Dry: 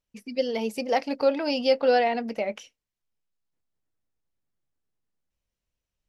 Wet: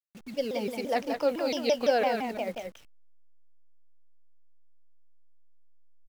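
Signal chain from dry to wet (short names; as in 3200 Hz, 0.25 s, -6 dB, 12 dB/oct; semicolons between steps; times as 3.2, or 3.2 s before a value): level-crossing sampler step -42.5 dBFS; echo 0.178 s -5.5 dB; shaped vibrato saw down 5.9 Hz, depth 250 cents; gain -4.5 dB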